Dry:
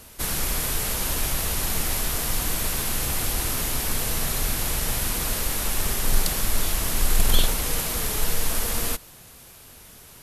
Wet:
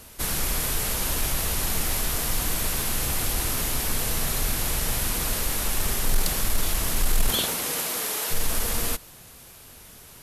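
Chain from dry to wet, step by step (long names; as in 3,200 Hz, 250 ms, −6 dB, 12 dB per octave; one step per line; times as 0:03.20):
0:07.29–0:08.30: high-pass filter 130 Hz → 420 Hz 12 dB per octave
soft clipping −11 dBFS, distortion −21 dB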